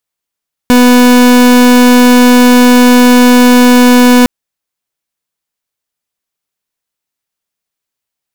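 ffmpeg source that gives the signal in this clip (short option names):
-f lavfi -i "aevalsrc='0.631*(2*lt(mod(247*t,1),0.38)-1)':d=3.56:s=44100"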